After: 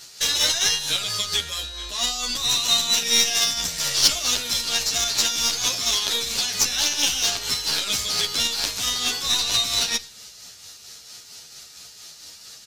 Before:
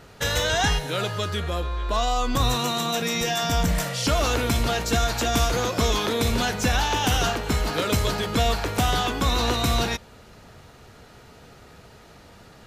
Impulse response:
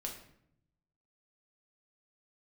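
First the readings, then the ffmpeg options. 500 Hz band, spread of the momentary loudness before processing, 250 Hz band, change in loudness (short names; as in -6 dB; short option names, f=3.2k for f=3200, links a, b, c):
-11.5 dB, 4 LU, -12.5 dB, +3.5 dB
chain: -filter_complex "[0:a]alimiter=limit=-18.5dB:level=0:latency=1,acrossover=split=4700[a][b];[b]acompressor=threshold=-46dB:ratio=4:attack=1:release=60[c];[a][c]amix=inputs=2:normalize=0,crystalizer=i=8.5:c=0,tremolo=f=4.4:d=0.44,equalizer=f=5.3k:w=0.73:g=15,asplit=2[d][e];[1:a]atrim=start_sample=2205,asetrate=35280,aresample=44100[f];[e][f]afir=irnorm=-1:irlink=0,volume=-10.5dB[g];[d][g]amix=inputs=2:normalize=0,aeval=exprs='2*(cos(1*acos(clip(val(0)/2,-1,1)))-cos(1*PI/2))+0.398*(cos(3*acos(clip(val(0)/2,-1,1)))-cos(3*PI/2))+0.141*(cos(4*acos(clip(val(0)/2,-1,1)))-cos(4*PI/2))':c=same,lowshelf=f=67:g=-6,asplit=2[h][i];[i]adelay=10.3,afreqshift=-1.3[j];[h][j]amix=inputs=2:normalize=1,volume=-1.5dB"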